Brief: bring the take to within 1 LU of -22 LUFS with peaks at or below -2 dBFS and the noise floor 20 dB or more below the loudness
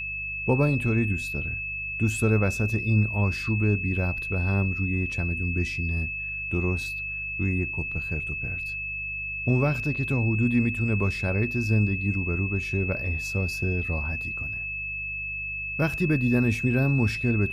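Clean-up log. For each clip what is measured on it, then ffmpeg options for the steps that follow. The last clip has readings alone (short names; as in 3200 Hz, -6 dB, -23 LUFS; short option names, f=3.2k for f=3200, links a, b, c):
hum 50 Hz; harmonics up to 150 Hz; hum level -41 dBFS; steady tone 2600 Hz; tone level -30 dBFS; loudness -26.0 LUFS; peak -9.0 dBFS; loudness target -22.0 LUFS
-> -af "bandreject=f=50:t=h:w=4,bandreject=f=100:t=h:w=4,bandreject=f=150:t=h:w=4"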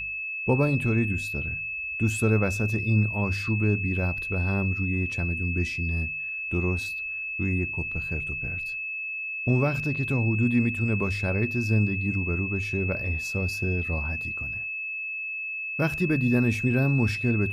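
hum none; steady tone 2600 Hz; tone level -30 dBFS
-> -af "bandreject=f=2.6k:w=30"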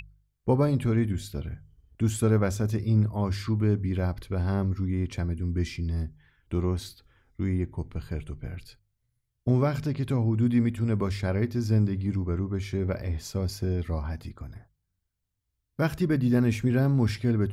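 steady tone none; loudness -27.5 LUFS; peak -9.5 dBFS; loudness target -22.0 LUFS
-> -af "volume=5.5dB"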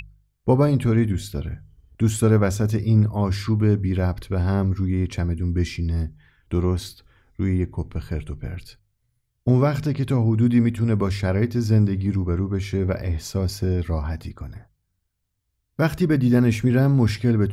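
loudness -22.0 LUFS; peak -4.0 dBFS; noise floor -74 dBFS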